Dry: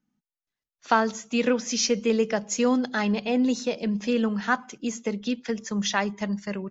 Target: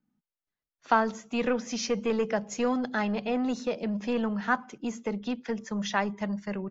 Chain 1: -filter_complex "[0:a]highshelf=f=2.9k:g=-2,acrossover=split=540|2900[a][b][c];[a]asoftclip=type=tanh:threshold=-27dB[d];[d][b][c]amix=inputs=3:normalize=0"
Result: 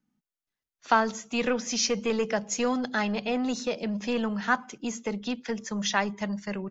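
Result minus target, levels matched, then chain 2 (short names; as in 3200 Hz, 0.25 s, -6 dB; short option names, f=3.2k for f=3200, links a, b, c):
8000 Hz band +7.0 dB
-filter_complex "[0:a]highshelf=f=2.9k:g=-12,acrossover=split=540|2900[a][b][c];[a]asoftclip=type=tanh:threshold=-27dB[d];[d][b][c]amix=inputs=3:normalize=0"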